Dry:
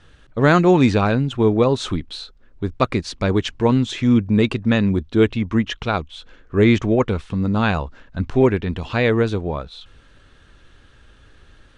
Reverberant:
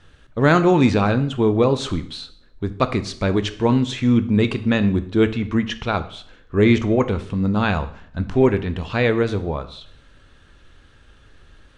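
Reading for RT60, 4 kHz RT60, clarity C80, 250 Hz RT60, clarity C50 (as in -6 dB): 0.60 s, 0.55 s, 17.5 dB, 0.70 s, 14.5 dB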